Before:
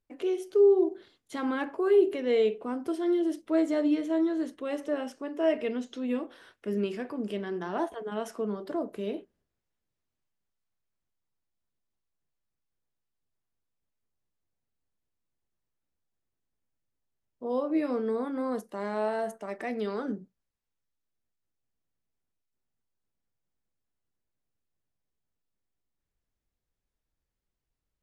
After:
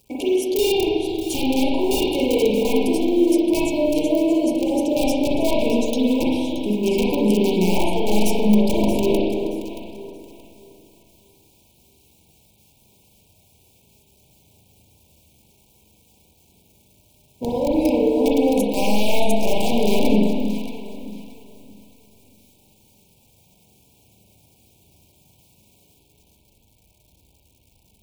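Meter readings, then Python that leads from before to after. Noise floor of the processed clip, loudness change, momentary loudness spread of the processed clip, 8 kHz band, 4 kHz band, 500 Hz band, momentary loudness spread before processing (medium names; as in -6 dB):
-58 dBFS, +9.5 dB, 10 LU, no reading, +19.0 dB, +8.0 dB, 12 LU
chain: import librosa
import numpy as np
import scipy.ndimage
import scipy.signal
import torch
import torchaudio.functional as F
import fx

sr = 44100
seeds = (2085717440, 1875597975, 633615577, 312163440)

p1 = fx.law_mismatch(x, sr, coded='mu')
p2 = fx.spec_repair(p1, sr, seeds[0], start_s=4.15, length_s=0.62, low_hz=1300.0, high_hz=4300.0, source='both')
p3 = scipy.signal.sosfilt(scipy.signal.butter(2, 61.0, 'highpass', fs=sr, output='sos'), p2)
p4 = fx.dereverb_blind(p3, sr, rt60_s=0.56)
p5 = fx.high_shelf(p4, sr, hz=3500.0, db=9.5)
p6 = fx.over_compress(p5, sr, threshold_db=-33.0, ratio=-0.5)
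p7 = p5 + (p6 * librosa.db_to_amplitude(2.5))
p8 = (np.mod(10.0 ** (17.0 / 20.0) * p7 + 1.0, 2.0) - 1.0) / 10.0 ** (17.0 / 20.0)
p9 = fx.brickwall_bandstop(p8, sr, low_hz=1000.0, high_hz=2200.0)
p10 = fx.low_shelf(p9, sr, hz=210.0, db=8.5)
p11 = p10 + fx.echo_alternate(p10, sr, ms=313, hz=800.0, feedback_pct=52, wet_db=-6.0, dry=0)
p12 = fx.rev_spring(p11, sr, rt60_s=1.4, pass_ms=(38, 43), chirp_ms=25, drr_db=-5.0)
y = p12 * librosa.db_to_amplitude(-2.5)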